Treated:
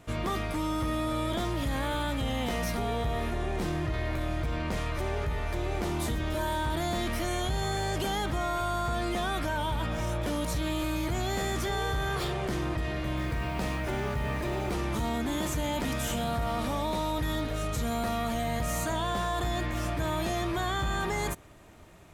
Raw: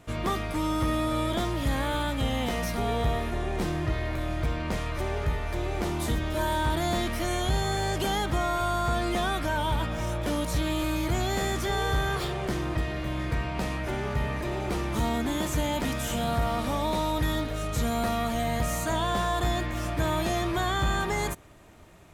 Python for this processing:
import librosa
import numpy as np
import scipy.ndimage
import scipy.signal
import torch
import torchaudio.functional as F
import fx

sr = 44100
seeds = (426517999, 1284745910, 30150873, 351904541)

p1 = fx.over_compress(x, sr, threshold_db=-30.0, ratio=-1.0)
p2 = x + F.gain(torch.from_numpy(p1), -2.0).numpy()
p3 = fx.quant_dither(p2, sr, seeds[0], bits=8, dither='none', at=(13.17, 14.74))
y = F.gain(torch.from_numpy(p3), -6.5).numpy()